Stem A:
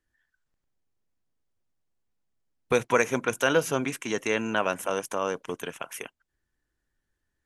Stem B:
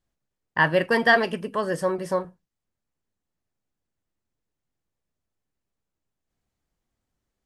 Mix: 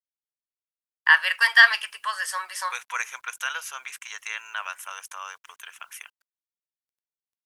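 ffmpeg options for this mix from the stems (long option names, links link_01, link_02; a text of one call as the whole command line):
ffmpeg -i stem1.wav -i stem2.wav -filter_complex "[0:a]volume=-13dB[link_01];[1:a]highpass=frequency=1500:poles=1,adelay=500,volume=0dB[link_02];[link_01][link_02]amix=inputs=2:normalize=0,highpass=frequency=1100:width=0.5412,highpass=frequency=1100:width=1.3066,dynaudnorm=framelen=320:gausssize=3:maxgain=11dB,acrusher=bits=10:mix=0:aa=0.000001" out.wav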